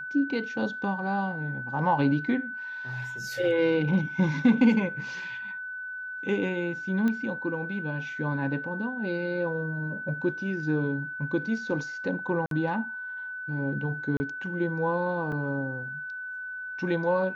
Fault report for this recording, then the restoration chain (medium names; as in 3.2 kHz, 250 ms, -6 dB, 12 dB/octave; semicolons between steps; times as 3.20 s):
whine 1.5 kHz -34 dBFS
7.08 s: pop -18 dBFS
12.46–12.51 s: dropout 52 ms
14.17–14.20 s: dropout 30 ms
15.32 s: dropout 3.2 ms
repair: de-click; band-stop 1.5 kHz, Q 30; interpolate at 12.46 s, 52 ms; interpolate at 14.17 s, 30 ms; interpolate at 15.32 s, 3.2 ms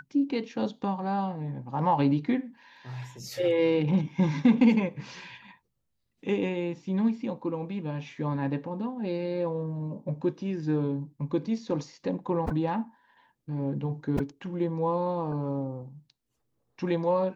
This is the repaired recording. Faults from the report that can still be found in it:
nothing left